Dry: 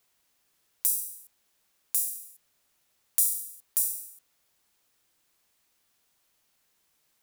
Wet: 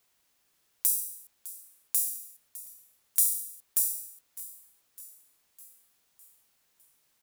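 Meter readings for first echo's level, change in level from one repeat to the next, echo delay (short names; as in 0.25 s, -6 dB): -17.0 dB, -5.0 dB, 0.606 s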